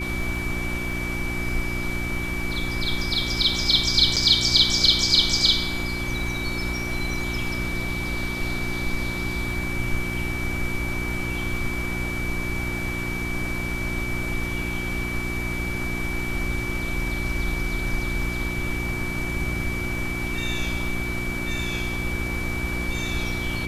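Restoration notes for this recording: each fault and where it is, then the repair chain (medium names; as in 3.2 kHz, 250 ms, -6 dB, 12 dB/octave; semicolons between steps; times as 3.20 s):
crackle 22 per s -34 dBFS
hum 60 Hz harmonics 6 -31 dBFS
whine 2.3 kHz -30 dBFS
4.16–4.17 s: dropout 6.2 ms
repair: de-click; de-hum 60 Hz, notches 6; band-stop 2.3 kHz, Q 30; interpolate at 4.16 s, 6.2 ms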